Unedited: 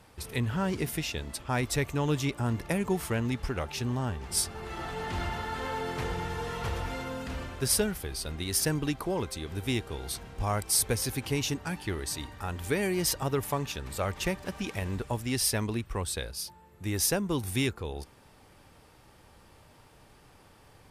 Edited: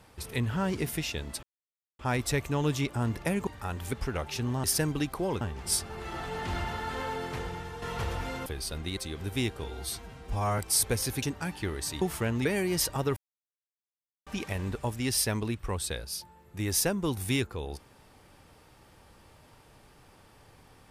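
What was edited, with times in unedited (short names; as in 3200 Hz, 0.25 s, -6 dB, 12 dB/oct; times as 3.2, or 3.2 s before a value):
1.43 insert silence 0.56 s
2.91–3.35 swap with 12.26–12.72
5.65–6.47 fade out, to -7.5 dB
7.11–8 cut
8.51–9.28 move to 4.06
9.95–10.58 stretch 1.5×
11.22–11.47 cut
13.43–14.53 mute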